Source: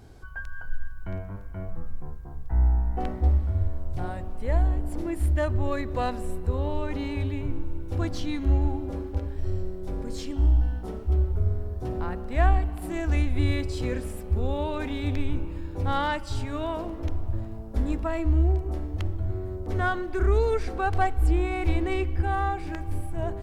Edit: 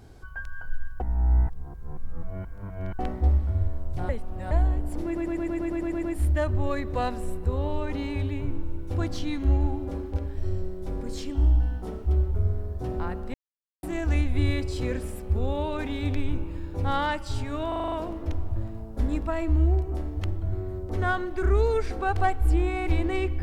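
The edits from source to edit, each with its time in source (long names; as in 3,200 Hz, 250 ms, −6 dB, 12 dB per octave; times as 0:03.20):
0:01.00–0:02.99: reverse
0:04.09–0:04.51: reverse
0:05.04: stutter 0.11 s, 10 plays
0:12.35–0:12.84: silence
0:16.69: stutter 0.04 s, 7 plays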